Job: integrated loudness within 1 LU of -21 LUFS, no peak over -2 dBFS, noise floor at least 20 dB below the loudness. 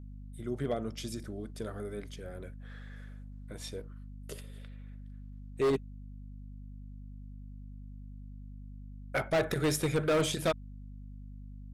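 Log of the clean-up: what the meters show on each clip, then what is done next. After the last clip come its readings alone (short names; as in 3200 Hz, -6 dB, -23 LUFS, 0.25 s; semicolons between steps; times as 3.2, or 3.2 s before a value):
clipped 1.4%; flat tops at -23.5 dBFS; hum 50 Hz; harmonics up to 250 Hz; hum level -43 dBFS; loudness -34.0 LUFS; peak -23.5 dBFS; loudness target -21.0 LUFS
-> clip repair -23.5 dBFS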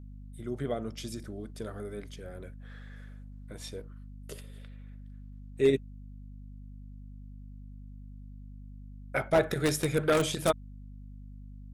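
clipped 0.0%; hum 50 Hz; harmonics up to 250 Hz; hum level -43 dBFS
-> notches 50/100/150/200/250 Hz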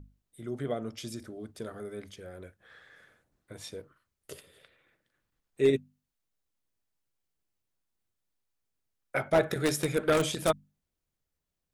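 hum none; loudness -30.5 LUFS; peak -13.5 dBFS; loudness target -21.0 LUFS
-> gain +9.5 dB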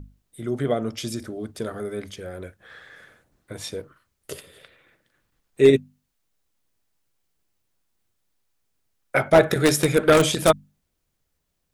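loudness -21.0 LUFS; peak -4.0 dBFS; noise floor -76 dBFS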